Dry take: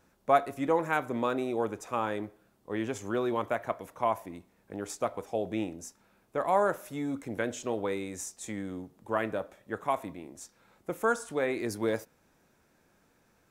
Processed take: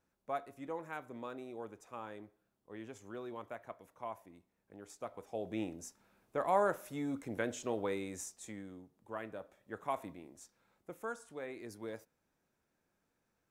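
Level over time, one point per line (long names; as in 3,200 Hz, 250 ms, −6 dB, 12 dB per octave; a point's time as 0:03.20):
0:04.89 −15 dB
0:05.70 −4.5 dB
0:08.14 −4.5 dB
0:08.80 −13 dB
0:09.33 −13 dB
0:10.02 −6.5 dB
0:11.13 −14.5 dB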